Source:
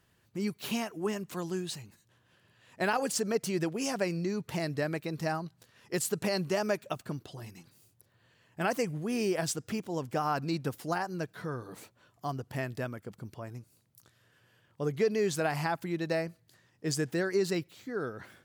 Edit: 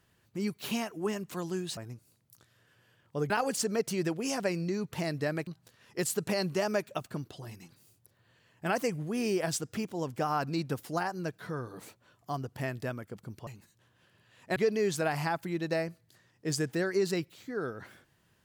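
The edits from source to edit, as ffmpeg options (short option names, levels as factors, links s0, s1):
-filter_complex "[0:a]asplit=6[s0][s1][s2][s3][s4][s5];[s0]atrim=end=1.772[s6];[s1]atrim=start=13.418:end=14.952[s7];[s2]atrim=start=2.858:end=5.032[s8];[s3]atrim=start=5.418:end=13.422[s9];[s4]atrim=start=1.768:end=2.862[s10];[s5]atrim=start=14.948[s11];[s6][s7]acrossfade=d=0.004:c1=hsin:c2=hsin[s12];[s12][s8]acrossfade=d=0.004:c1=hsin:c2=hsin[s13];[s13][s9]acrossfade=d=0.004:c1=hsin:c2=hsin[s14];[s14][s10]acrossfade=d=0.004:c1=hsin:c2=hsin[s15];[s15][s11]acrossfade=d=0.004:c1=hsin:c2=hsin"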